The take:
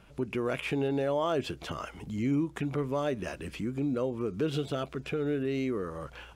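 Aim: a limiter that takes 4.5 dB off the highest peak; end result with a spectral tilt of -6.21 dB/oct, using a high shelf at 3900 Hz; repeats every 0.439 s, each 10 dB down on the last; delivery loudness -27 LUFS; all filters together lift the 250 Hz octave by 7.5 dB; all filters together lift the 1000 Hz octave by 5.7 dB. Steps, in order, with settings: bell 250 Hz +8.5 dB; bell 1000 Hz +6.5 dB; high shelf 3900 Hz +4 dB; limiter -17.5 dBFS; feedback echo 0.439 s, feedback 32%, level -10 dB; gain +0.5 dB

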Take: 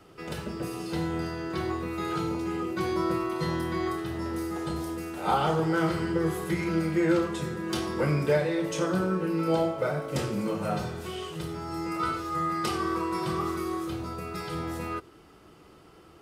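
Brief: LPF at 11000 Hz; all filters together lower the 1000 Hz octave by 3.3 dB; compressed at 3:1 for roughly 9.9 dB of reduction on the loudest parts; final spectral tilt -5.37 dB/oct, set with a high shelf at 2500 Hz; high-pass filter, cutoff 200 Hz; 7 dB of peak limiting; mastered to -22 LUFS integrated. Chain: HPF 200 Hz; LPF 11000 Hz; bell 1000 Hz -3 dB; high shelf 2500 Hz -7 dB; compressor 3:1, threshold -35 dBFS; gain +17 dB; limiter -13.5 dBFS

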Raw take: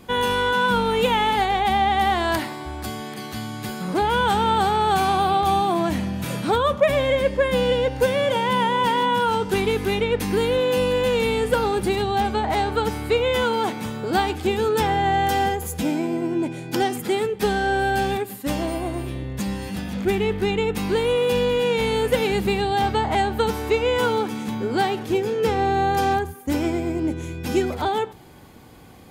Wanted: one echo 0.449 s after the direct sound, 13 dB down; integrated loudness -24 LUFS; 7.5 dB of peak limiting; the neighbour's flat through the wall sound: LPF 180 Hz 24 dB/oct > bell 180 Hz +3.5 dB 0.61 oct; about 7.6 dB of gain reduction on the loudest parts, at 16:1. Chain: compressor 16:1, threshold -21 dBFS; limiter -20.5 dBFS; LPF 180 Hz 24 dB/oct; bell 180 Hz +3.5 dB 0.61 oct; echo 0.449 s -13 dB; gain +13.5 dB

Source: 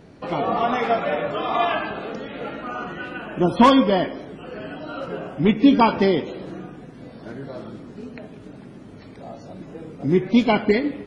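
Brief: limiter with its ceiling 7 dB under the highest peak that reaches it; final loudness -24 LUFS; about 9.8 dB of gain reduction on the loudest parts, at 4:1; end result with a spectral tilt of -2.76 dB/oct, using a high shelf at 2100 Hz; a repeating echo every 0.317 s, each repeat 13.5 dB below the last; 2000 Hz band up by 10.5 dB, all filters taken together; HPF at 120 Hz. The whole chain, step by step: HPF 120 Hz; bell 2000 Hz +9 dB; high shelf 2100 Hz +7 dB; compressor 4:1, threshold -19 dBFS; limiter -16 dBFS; feedback echo 0.317 s, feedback 21%, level -13.5 dB; gain +3 dB

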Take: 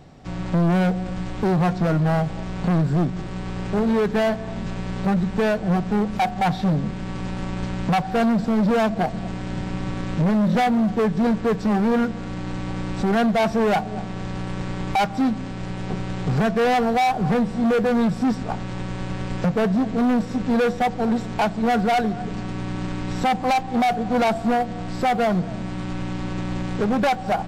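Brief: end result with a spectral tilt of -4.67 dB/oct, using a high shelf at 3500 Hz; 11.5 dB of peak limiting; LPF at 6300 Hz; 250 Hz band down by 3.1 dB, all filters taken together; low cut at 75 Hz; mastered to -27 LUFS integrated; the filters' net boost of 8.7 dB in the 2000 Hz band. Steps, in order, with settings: HPF 75 Hz; LPF 6300 Hz; bell 250 Hz -4 dB; bell 2000 Hz +9 dB; high shelf 3500 Hz +7 dB; gain +1 dB; limiter -17 dBFS

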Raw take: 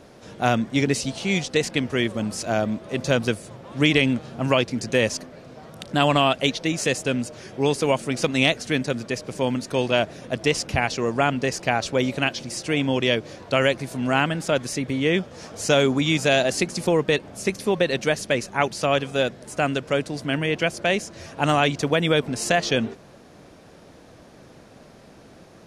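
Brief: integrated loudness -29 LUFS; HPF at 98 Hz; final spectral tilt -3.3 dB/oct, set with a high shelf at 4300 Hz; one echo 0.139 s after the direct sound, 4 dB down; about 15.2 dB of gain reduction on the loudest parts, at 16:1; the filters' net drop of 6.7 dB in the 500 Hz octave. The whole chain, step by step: HPF 98 Hz; bell 500 Hz -8.5 dB; high shelf 4300 Hz +4.5 dB; compressor 16:1, threshold -30 dBFS; echo 0.139 s -4 dB; gain +4.5 dB

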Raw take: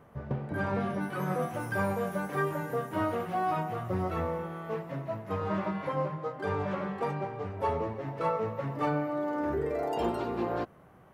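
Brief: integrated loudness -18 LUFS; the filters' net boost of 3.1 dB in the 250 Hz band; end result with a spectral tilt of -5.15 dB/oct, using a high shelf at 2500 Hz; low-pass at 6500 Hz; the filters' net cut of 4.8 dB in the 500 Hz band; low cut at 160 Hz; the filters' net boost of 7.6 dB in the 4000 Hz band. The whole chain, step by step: HPF 160 Hz; LPF 6500 Hz; bell 250 Hz +8.5 dB; bell 500 Hz -9 dB; high shelf 2500 Hz +4 dB; bell 4000 Hz +7.5 dB; gain +15 dB

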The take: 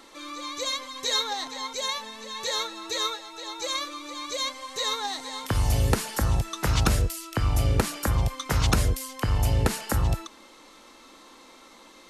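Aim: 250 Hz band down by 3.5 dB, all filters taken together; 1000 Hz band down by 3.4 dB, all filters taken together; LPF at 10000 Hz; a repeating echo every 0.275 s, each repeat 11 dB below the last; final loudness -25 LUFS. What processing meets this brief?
LPF 10000 Hz; bell 250 Hz -5 dB; bell 1000 Hz -4 dB; feedback echo 0.275 s, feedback 28%, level -11 dB; gain +3 dB

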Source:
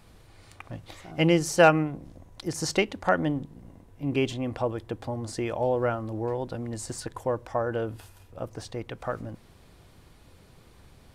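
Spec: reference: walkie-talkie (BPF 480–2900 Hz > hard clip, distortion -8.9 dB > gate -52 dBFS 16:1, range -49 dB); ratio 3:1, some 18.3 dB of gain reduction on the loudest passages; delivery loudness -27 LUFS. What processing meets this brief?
compressor 3:1, threshold -38 dBFS; BPF 480–2900 Hz; hard clip -37.5 dBFS; gate -52 dBFS 16:1, range -49 dB; gain +19.5 dB

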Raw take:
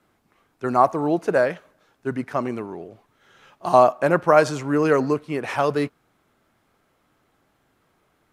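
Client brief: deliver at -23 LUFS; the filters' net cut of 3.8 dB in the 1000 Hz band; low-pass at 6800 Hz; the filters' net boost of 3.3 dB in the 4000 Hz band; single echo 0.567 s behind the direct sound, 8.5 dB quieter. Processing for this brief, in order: LPF 6800 Hz; bell 1000 Hz -5.5 dB; bell 4000 Hz +5 dB; echo 0.567 s -8.5 dB

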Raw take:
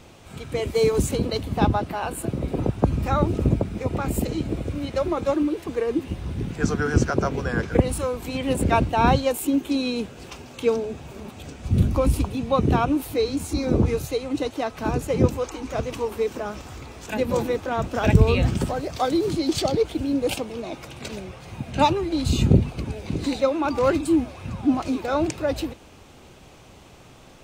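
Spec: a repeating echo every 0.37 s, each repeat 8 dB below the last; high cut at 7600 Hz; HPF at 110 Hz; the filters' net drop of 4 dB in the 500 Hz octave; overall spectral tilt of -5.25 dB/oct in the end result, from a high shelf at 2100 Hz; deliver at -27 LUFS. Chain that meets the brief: HPF 110 Hz; LPF 7600 Hz; bell 500 Hz -5 dB; high shelf 2100 Hz +5 dB; feedback echo 0.37 s, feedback 40%, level -8 dB; gain -1.5 dB

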